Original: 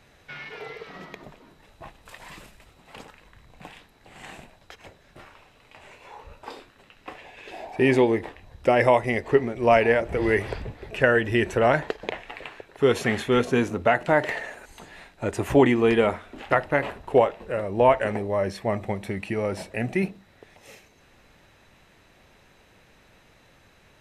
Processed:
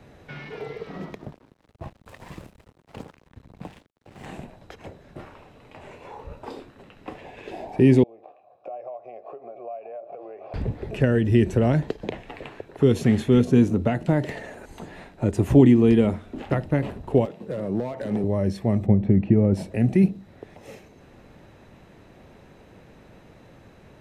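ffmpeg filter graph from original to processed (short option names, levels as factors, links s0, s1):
-filter_complex "[0:a]asettb=1/sr,asplit=3[s0][s1][s2];[s0]atrim=end=1.104[s3];[s1]atrim=start=1.1:end=4.26,asetpts=PTS-STARTPTS,afade=t=in:d=0.004:c=qsin,afade=t=out:st=3.156:d=0.004:c=qsin,equalizer=f=86:w=1.2:g=8,aeval=exprs='sgn(val(0))*max(abs(val(0))-0.00376,0)':c=same[s4];[s2]atrim=start=4.256[s5];[s3][s4]acrossfade=d=0.004:c1=hsin:c2=qsin[s6];[s6][s5]acrossfade=d=0.004:c1=qsin:c2=hsin,asettb=1/sr,asplit=3[s7][s8][s9];[s7]atrim=end=8.034[s10];[s8]atrim=start=8.03:end=10.54,asetpts=PTS-STARTPTS,afade=t=in:d=0.004:c=qsin,afade=t=out:st=2.506:d=0.004:c=qsin,highpass=f=120:w=0.5412,highpass=f=120:w=1.3066,equalizer=f=170:t=q:w=4:g=-8,equalizer=f=250:t=q:w=4:g=-8,equalizer=f=580:t=q:w=4:g=8,equalizer=f=3000:t=q:w=4:g=-6,lowpass=f=7400:w=0.5412,lowpass=f=7400:w=1.3066,acompressor=threshold=0.0355:ratio=5:attack=3.2:release=140:knee=1:detection=peak,asplit=3[s11][s12][s13];[s11]bandpass=f=730:t=q:w=8,volume=1[s14];[s12]bandpass=f=1090:t=q:w=8,volume=0.501[s15];[s13]bandpass=f=2440:t=q:w=8,volume=0.355[s16];[s14][s15][s16]amix=inputs=3:normalize=0[s17];[s9]atrim=start=10.536[s18];[s10][s17]acrossfade=d=0.004:c1=hsin:c2=qsin[s19];[s19][s18]acrossfade=d=0.004:c1=qsin:c2=hsin,asettb=1/sr,asplit=3[s20][s21][s22];[s20]atrim=end=17.254[s23];[s21]atrim=start=17.25:end=18.24,asetpts=PTS-STARTPTS,afade=t=in:d=0.004:c=qsin,afade=t=out:st=0.986:d=0.004:c=qsin,acompressor=threshold=0.0562:ratio=6:attack=3.2:release=140:knee=1:detection=peak,highpass=f=120:w=0.5412,highpass=f=120:w=1.3066,asoftclip=type=hard:threshold=0.0531[s24];[s22]atrim=start=18.236[s25];[s23][s24]acrossfade=d=0.004:c1=hsin:c2=qsin[s26];[s26][s25]acrossfade=d=0.004:c1=qsin:c2=hsin,asettb=1/sr,asplit=3[s27][s28][s29];[s27]atrim=end=18.864[s30];[s28]atrim=start=18.86:end=19.54,asetpts=PTS-STARTPTS,afade=t=in:d=0.004:c=qsin,afade=t=out:st=0.676:d=0.004:c=qsin,lowpass=2900,tiltshelf=f=890:g=5.5,bandreject=f=900:w=27[s31];[s29]atrim=start=19.536[s32];[s30][s31]acrossfade=d=0.004:c1=hsin:c2=qsin[s33];[s33][s32]acrossfade=d=0.004:c1=qsin:c2=hsin,lowshelf=f=70:g=-10.5,acrossover=split=270|3000[s34][s35][s36];[s35]acompressor=threshold=0.00562:ratio=2[s37];[s34][s37][s36]amix=inputs=3:normalize=0,tiltshelf=f=870:g=8,volume=1.78"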